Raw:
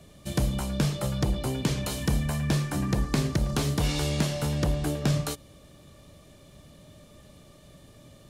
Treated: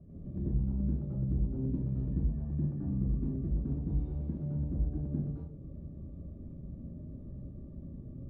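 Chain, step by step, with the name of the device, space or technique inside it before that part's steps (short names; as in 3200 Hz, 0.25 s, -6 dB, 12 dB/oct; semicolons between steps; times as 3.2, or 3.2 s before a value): television next door (compressor 4:1, threshold -40 dBFS, peak gain reduction 16.5 dB; LPF 260 Hz 12 dB/oct; reverb RT60 0.50 s, pre-delay 83 ms, DRR -7.5 dB)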